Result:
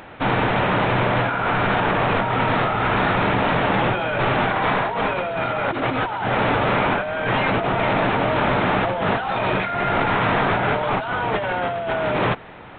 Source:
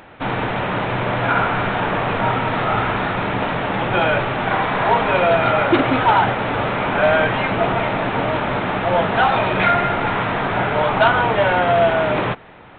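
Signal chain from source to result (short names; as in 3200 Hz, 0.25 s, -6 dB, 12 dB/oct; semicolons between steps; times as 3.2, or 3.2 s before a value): negative-ratio compressor -21 dBFS, ratio -1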